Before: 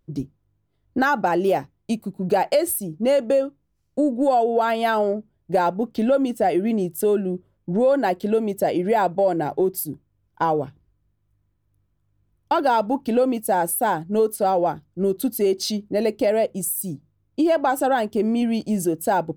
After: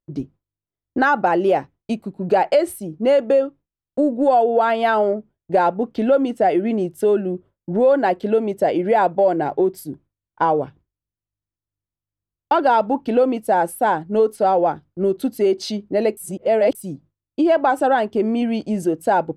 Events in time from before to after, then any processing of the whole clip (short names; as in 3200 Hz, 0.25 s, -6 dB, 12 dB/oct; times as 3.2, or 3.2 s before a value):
16.17–16.75 reverse
whole clip: gate with hold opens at -43 dBFS; LPF 10000 Hz 12 dB/oct; tone controls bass -5 dB, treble -10 dB; gain +3.5 dB